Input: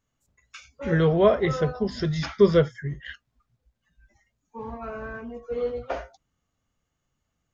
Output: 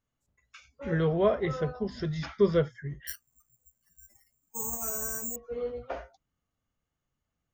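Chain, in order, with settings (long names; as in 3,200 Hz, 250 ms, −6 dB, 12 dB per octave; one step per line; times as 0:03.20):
high-shelf EQ 5,000 Hz −6 dB
0:03.07–0:05.36: bad sample-rate conversion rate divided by 6×, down filtered, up zero stuff
level −6 dB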